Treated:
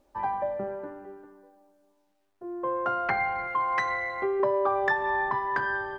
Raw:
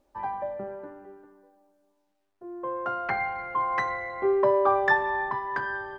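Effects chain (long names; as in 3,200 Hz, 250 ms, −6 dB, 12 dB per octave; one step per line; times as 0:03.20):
downward compressor 6 to 1, threshold −25 dBFS, peak gain reduction 8.5 dB
0:03.47–0:04.40: tilt shelving filter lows −4 dB, about 1,400 Hz
level +3 dB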